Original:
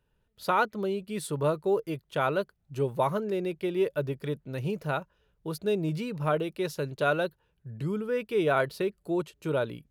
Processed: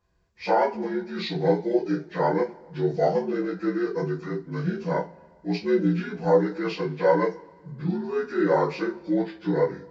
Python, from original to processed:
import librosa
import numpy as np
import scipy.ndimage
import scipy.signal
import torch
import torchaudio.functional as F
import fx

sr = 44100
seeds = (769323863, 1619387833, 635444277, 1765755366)

y = fx.partial_stretch(x, sr, pct=77)
y = fx.rev_double_slope(y, sr, seeds[0], early_s=0.22, late_s=1.8, knee_db=-28, drr_db=-6.5)